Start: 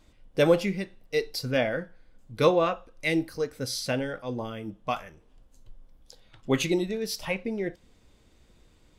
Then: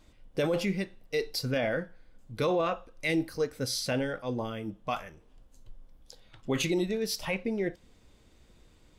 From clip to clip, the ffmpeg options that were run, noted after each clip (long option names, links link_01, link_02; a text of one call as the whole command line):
ffmpeg -i in.wav -af "alimiter=limit=-20dB:level=0:latency=1:release=12" out.wav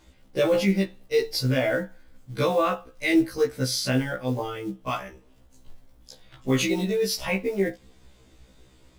ffmpeg -i in.wav -af "acrusher=bits=7:mode=log:mix=0:aa=0.000001,afftfilt=real='re*1.73*eq(mod(b,3),0)':imag='im*1.73*eq(mod(b,3),0)':win_size=2048:overlap=0.75,volume=7.5dB" out.wav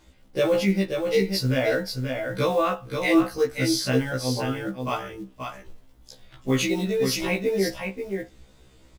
ffmpeg -i in.wav -af "aecho=1:1:531:0.531" out.wav